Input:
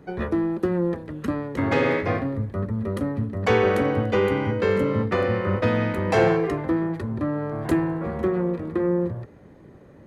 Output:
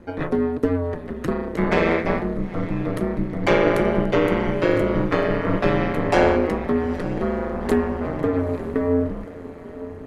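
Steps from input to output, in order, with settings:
feedback delay with all-pass diffusion 912 ms, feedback 51%, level −15 dB
ring modulation 86 Hz
level +5 dB

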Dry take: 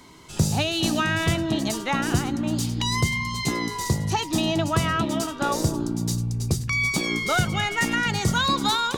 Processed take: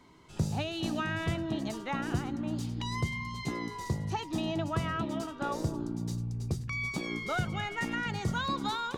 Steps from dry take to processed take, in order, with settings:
high-shelf EQ 4,000 Hz −11.5 dB
level −8.5 dB

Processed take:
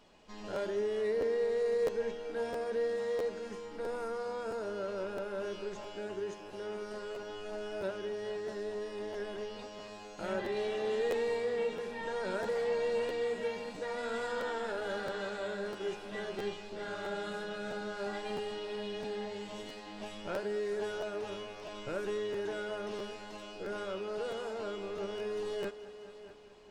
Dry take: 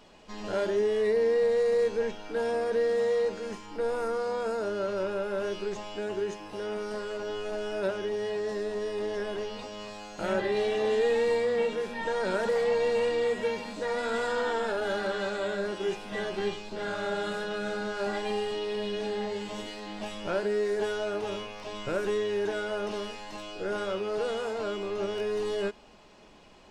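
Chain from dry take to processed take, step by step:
echo machine with several playback heads 212 ms, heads all three, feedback 42%, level −18 dB
regular buffer underruns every 0.66 s, samples 512, repeat, from 0:00.54
level −7 dB

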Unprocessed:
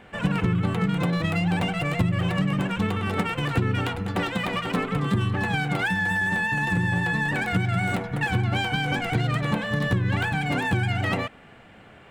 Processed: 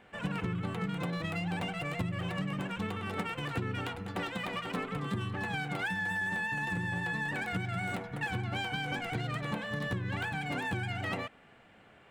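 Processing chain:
low-shelf EQ 200 Hz −5 dB
level −8.5 dB

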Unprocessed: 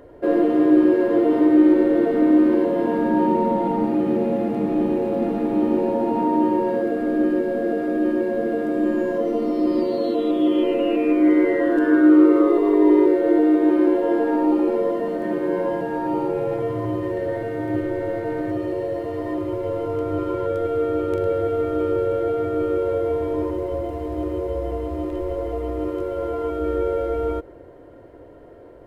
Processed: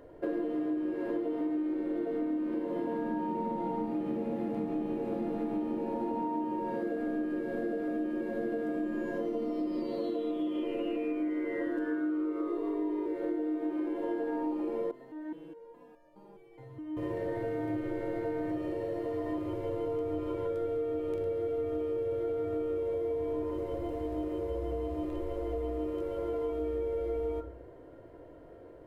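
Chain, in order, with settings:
rectangular room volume 210 cubic metres, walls furnished, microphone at 0.64 metres
downward compressor 12 to 1, threshold −22 dBFS, peak gain reduction 14.5 dB
0:14.91–0:16.97: step-sequenced resonator 4.8 Hz 130–590 Hz
level −7.5 dB

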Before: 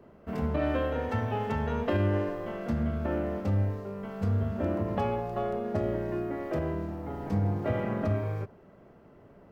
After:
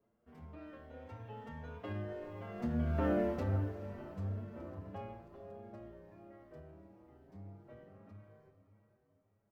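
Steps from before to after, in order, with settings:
source passing by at 0:03.14, 8 m/s, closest 1.8 metres
on a send: feedback delay with all-pass diffusion 474 ms, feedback 45%, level −12 dB
on the sum: barber-pole flanger 6.9 ms +1.6 Hz
level +2.5 dB

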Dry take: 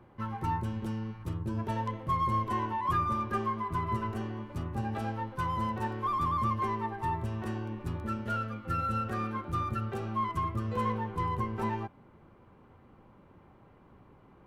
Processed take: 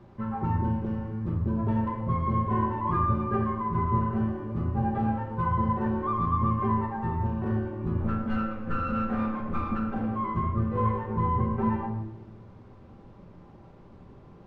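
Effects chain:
0:08.00–0:10.09: lower of the sound and its delayed copy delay 3.9 ms
high-shelf EQ 2,200 Hz −11 dB
bit reduction 11 bits
head-to-tape spacing loss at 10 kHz 28 dB
convolution reverb RT60 1.0 s, pre-delay 5 ms, DRR 1 dB
level +5 dB

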